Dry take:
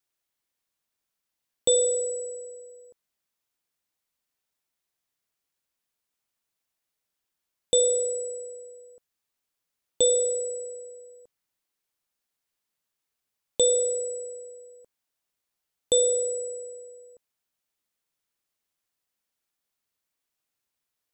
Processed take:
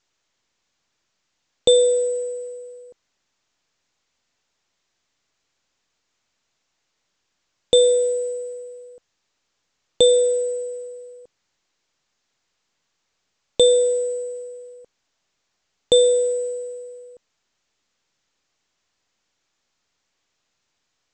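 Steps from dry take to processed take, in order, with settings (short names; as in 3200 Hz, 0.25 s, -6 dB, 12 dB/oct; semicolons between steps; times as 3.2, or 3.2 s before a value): gain +8 dB; µ-law 128 kbps 16000 Hz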